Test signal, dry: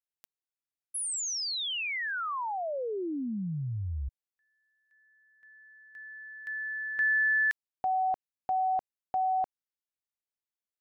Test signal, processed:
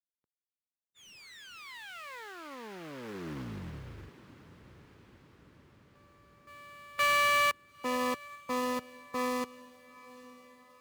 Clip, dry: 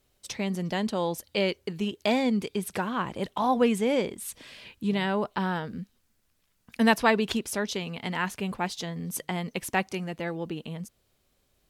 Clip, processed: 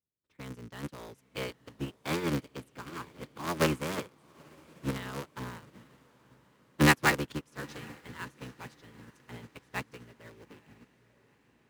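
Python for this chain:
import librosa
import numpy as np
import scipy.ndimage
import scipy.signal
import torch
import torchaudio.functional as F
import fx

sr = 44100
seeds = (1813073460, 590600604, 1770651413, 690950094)

p1 = fx.cycle_switch(x, sr, every=3, mode='inverted')
p2 = fx.env_lowpass(p1, sr, base_hz=790.0, full_db=-25.5)
p3 = scipy.signal.sosfilt(scipy.signal.butter(2, 80.0, 'highpass', fs=sr, output='sos'), p2)
p4 = fx.sample_hold(p3, sr, seeds[0], rate_hz=5700.0, jitter_pct=20)
p5 = p3 + (p4 * librosa.db_to_amplitude(-7.5))
p6 = fx.peak_eq(p5, sr, hz=700.0, db=-10.0, octaves=0.72)
p7 = p6 + fx.echo_diffused(p6, sr, ms=892, feedback_pct=62, wet_db=-9.5, dry=0)
y = fx.upward_expand(p7, sr, threshold_db=-35.0, expansion=2.5)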